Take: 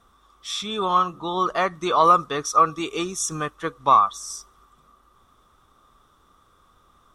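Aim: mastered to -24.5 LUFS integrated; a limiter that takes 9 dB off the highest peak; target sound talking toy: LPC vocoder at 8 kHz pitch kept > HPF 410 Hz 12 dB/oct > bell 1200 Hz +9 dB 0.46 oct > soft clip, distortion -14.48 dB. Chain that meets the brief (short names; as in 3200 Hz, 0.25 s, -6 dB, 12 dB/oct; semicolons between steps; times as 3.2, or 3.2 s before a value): limiter -13.5 dBFS; LPC vocoder at 8 kHz pitch kept; HPF 410 Hz 12 dB/oct; bell 1200 Hz +9 dB 0.46 oct; soft clip -12 dBFS; gain -2.5 dB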